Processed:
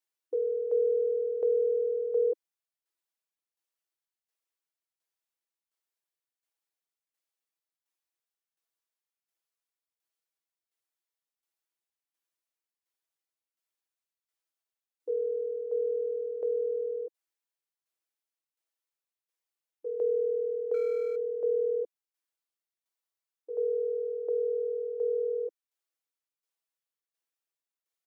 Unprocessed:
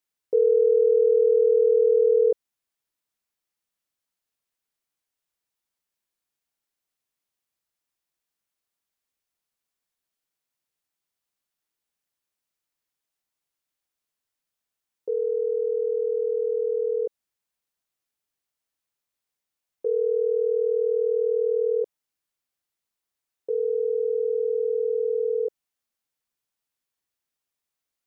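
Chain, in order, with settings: 20.74–21.16 median filter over 41 samples; comb 6.1 ms, depth 90%; limiter -12.5 dBFS, peak gain reduction 3.5 dB; tremolo saw down 1.4 Hz, depth 65%; brick-wall FIR high-pass 310 Hz; gain -6.5 dB

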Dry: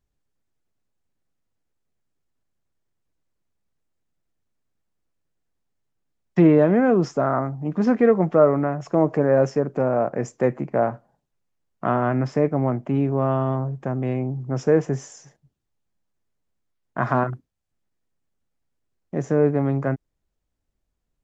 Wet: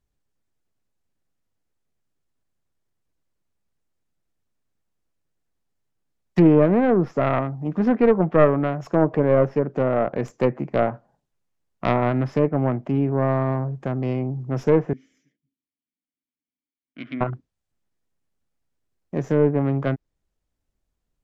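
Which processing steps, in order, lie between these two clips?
tracing distortion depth 0.26 ms; treble ducked by the level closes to 1700 Hz, closed at -14.5 dBFS; 14.93–17.21 vowel filter i

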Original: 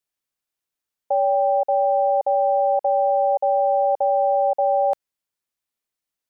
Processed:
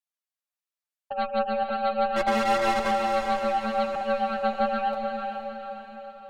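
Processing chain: elliptic high-pass 560 Hz; 2.16–2.91 sample leveller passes 3; flange 0.77 Hz, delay 8 ms, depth 6.8 ms, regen +9%; added harmonics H 4 -8 dB, 6 -12 dB, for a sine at -13 dBFS; flange 0.33 Hz, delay 1 ms, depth 8.4 ms, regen +35%; diffused feedback echo 0.453 s, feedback 50%, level -5 dB; gain -1.5 dB

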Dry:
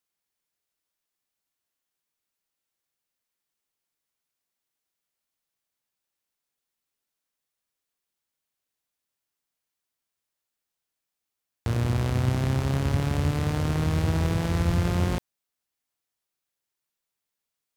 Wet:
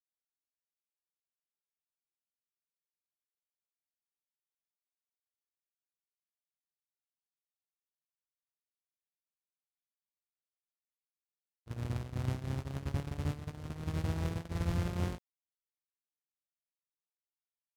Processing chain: gate -23 dBFS, range -37 dB; gain -8.5 dB

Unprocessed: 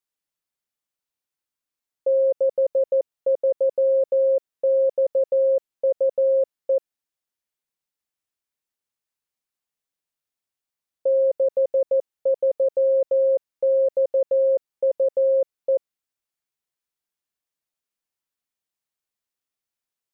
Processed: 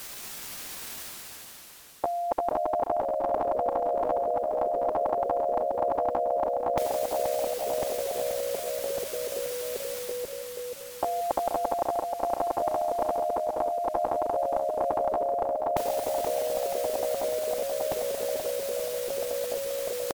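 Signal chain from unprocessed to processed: pitch shift +4.5 st; reverse; upward compressor, threshold -41 dBFS; reverse; echoes that change speed 0.222 s, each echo -2 st, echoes 3, each echo -6 dB; on a send: feedback echo 0.48 s, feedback 34%, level -10 dB; on the sum: spectral compressor 4:1; gain -1 dB

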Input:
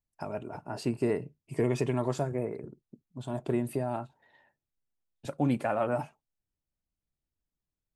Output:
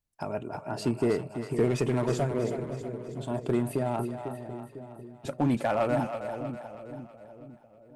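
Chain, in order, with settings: one-sided clip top -24 dBFS; split-band echo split 560 Hz, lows 0.499 s, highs 0.321 s, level -8 dB; gain +3 dB

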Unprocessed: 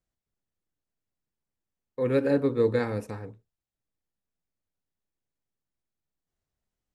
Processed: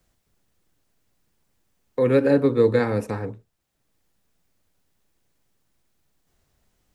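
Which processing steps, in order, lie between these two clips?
three-band squash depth 40%; gain +6 dB

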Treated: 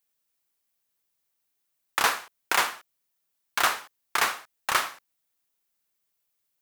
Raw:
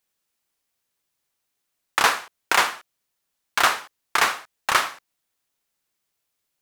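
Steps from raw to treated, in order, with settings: high shelf 12000 Hz +9.5 dB; gain -5 dB

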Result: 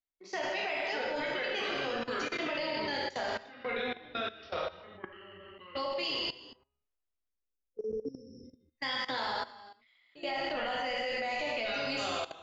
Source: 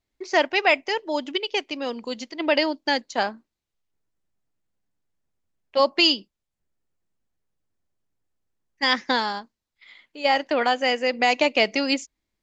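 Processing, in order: octaver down 1 oct, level -3 dB; gate -43 dBFS, range -9 dB; resonator 660 Hz, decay 0.29 s, mix 70%; echoes that change speed 0.519 s, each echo -4 st, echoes 2, each echo -6 dB; spectral delete 7.28–8.45, 520–5100 Hz; in parallel at +2 dB: compressor 5:1, threshold -43 dBFS, peak gain reduction 18.5 dB; on the sum: limiter -19 dBFS, peak gain reduction 6 dB; Bessel low-pass 6600 Hz; bell 130 Hz -15 dB 1.7 oct; non-linear reverb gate 0.42 s falling, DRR -3.5 dB; level quantiser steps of 17 dB

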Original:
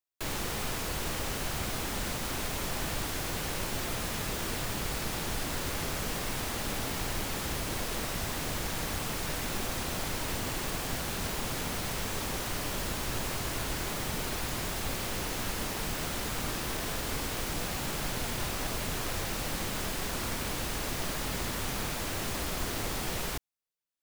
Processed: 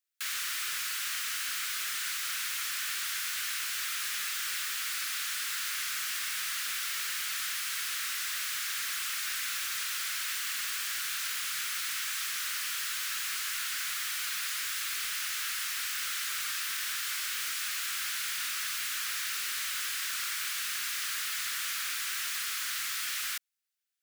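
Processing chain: steep high-pass 1300 Hz 48 dB/oct; soft clip -31.5 dBFS, distortion -18 dB; gain +5 dB

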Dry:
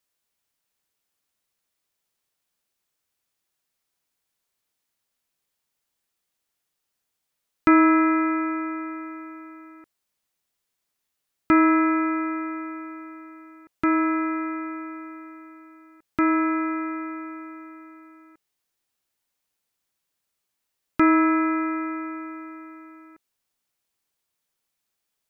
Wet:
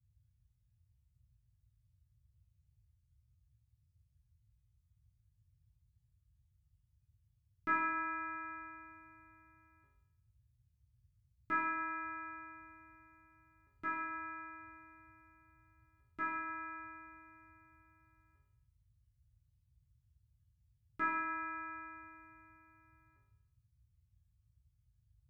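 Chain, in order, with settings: resonator bank C#3 sus4, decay 0.82 s; dynamic EQ 1400 Hz, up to +6 dB, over -58 dBFS, Q 1.2; band noise 43–120 Hz -74 dBFS; gain +2 dB

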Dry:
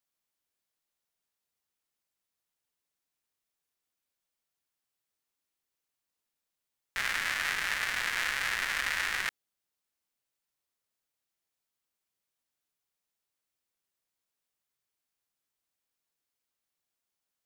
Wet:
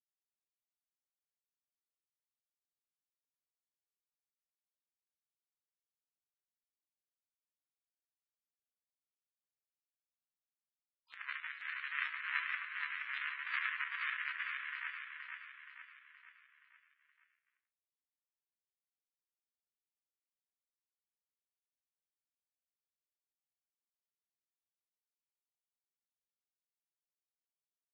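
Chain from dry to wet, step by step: G.711 law mismatch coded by A; Chebyshev band-pass 1000–5500 Hz, order 3; gate -30 dBFS, range -23 dB; spectral gate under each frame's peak -15 dB strong; upward compressor, threshold -52 dBFS; granular stretch 1.6×, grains 74 ms; rotary speaker horn 6.7 Hz, later 0.7 Hz, at 0.52; feedback echo 0.473 s, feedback 49%, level -4.5 dB; ending taper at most 210 dB/s; gain +5.5 dB

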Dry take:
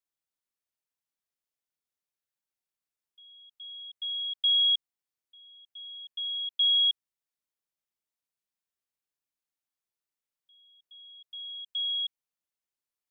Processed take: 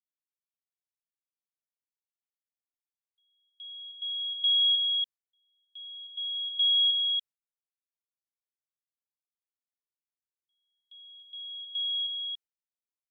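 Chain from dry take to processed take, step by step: gate with hold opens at -49 dBFS; on a send: echo 0.285 s -4.5 dB

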